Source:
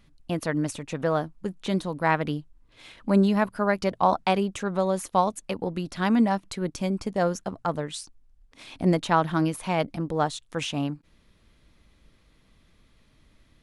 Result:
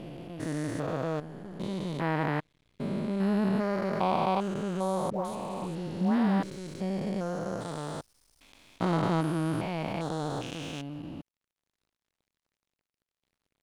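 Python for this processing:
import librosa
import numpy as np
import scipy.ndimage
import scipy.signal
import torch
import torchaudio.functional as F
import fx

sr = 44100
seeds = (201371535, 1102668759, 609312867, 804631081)

y = fx.spec_steps(x, sr, hold_ms=400)
y = fx.dispersion(y, sr, late='highs', ms=149.0, hz=1100.0, at=(5.1, 6.43))
y = np.sign(y) * np.maximum(np.abs(y) - 10.0 ** (-54.5 / 20.0), 0.0)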